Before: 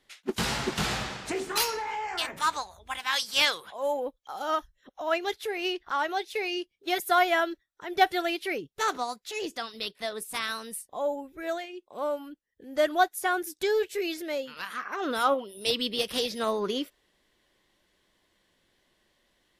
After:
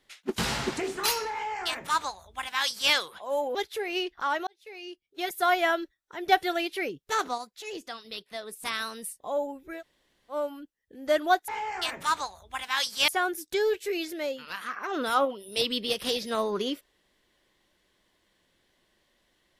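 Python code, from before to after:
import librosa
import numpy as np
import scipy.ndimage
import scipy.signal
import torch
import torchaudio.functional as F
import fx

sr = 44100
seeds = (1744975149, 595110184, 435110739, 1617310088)

y = fx.edit(x, sr, fx.cut(start_s=0.77, length_s=0.52),
    fx.duplicate(start_s=1.84, length_s=1.6, to_s=13.17),
    fx.cut(start_s=4.07, length_s=1.17),
    fx.fade_in_span(start_s=6.16, length_s=1.2),
    fx.clip_gain(start_s=9.07, length_s=1.25, db=-4.5),
    fx.room_tone_fill(start_s=11.47, length_s=0.55, crossfade_s=0.1), tone=tone)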